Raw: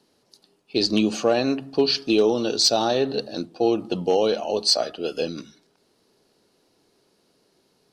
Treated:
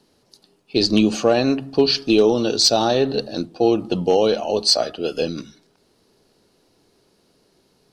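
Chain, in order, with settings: bass shelf 100 Hz +10.5 dB; trim +3 dB

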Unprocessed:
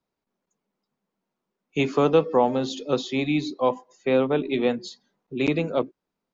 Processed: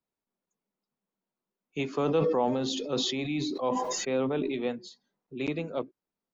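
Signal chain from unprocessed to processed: 1.88–4.52 s: decay stretcher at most 22 dB/s; trim -8.5 dB

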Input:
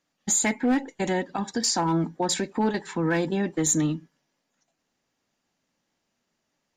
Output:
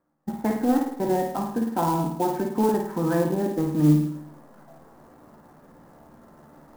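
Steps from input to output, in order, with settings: low-pass 1.3 kHz 24 dB/octave; reverse; upward compressor, threshold -32 dBFS; reverse; feedback comb 74 Hz, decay 0.21 s, harmonics all, mix 80%; on a send: flutter echo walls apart 9.1 m, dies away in 0.7 s; on the sum: sampling jitter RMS 0.031 ms; trim +7 dB

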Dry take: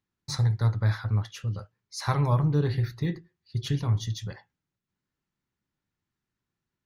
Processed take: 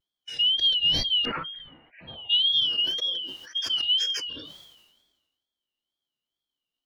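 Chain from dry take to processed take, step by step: four frequency bands reordered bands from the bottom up 2413; 1.25–2.30 s: elliptic low-pass 2.3 kHz, stop band 60 dB; harmonic-percussive split percussive -13 dB; wow and flutter 120 cents; decay stretcher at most 46 dB/s

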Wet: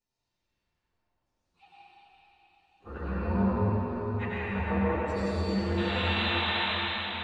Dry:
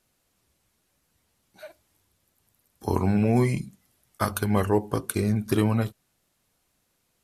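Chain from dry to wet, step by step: frequency axis rescaled in octaves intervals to 128%; LFO low-pass saw down 0.79 Hz 480–6900 Hz; painted sound noise, 5.77–6.59 s, 590–4100 Hz -26 dBFS; feedback comb 900 Hz, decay 0.32 s, mix 80%; reverberation RT60 5.4 s, pre-delay 78 ms, DRR -9.5 dB

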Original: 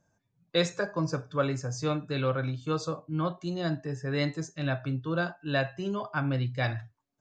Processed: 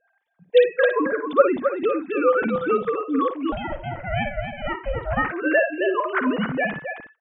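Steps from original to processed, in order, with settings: formants replaced by sine waves; multi-tap echo 55/266/329 ms -9.5/-7.5/-17.5 dB; 3.52–5.30 s: ring modulator 290 Hz; trim +7.5 dB

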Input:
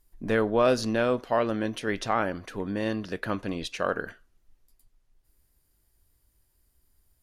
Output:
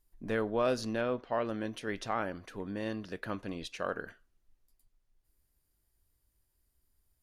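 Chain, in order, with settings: 1.01–1.45 s: low-pass 3.8 kHz 12 dB/octave; trim -7.5 dB

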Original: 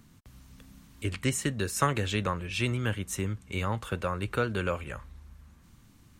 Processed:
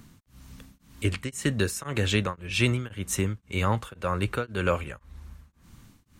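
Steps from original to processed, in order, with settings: tremolo of two beating tones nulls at 1.9 Hz; trim +6 dB

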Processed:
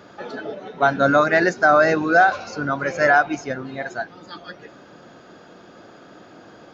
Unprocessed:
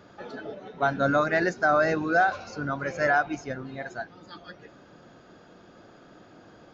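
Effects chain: bass shelf 100 Hz -11.5 dB; trim +7.5 dB

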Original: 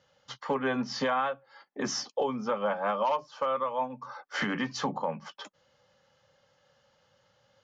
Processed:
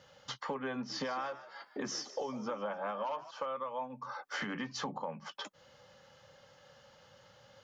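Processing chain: compression 3:1, threshold -48 dBFS, peak gain reduction 17 dB; 0.74–3.31 s: frequency-shifting echo 152 ms, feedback 41%, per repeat +72 Hz, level -14.5 dB; trim +7 dB

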